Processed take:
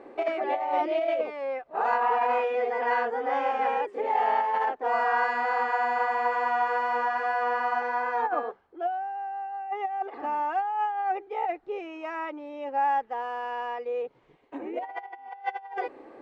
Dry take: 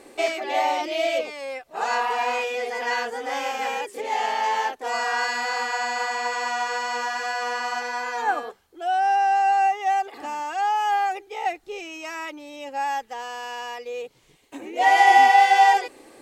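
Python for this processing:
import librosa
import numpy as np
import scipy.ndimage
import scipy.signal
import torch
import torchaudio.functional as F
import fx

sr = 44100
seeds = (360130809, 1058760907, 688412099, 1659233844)

y = scipy.signal.sosfilt(scipy.signal.butter(2, 1300.0, 'lowpass', fs=sr, output='sos'), x)
y = fx.low_shelf(y, sr, hz=160.0, db=-12.0)
y = fx.over_compress(y, sr, threshold_db=-26.0, ratio=-0.5)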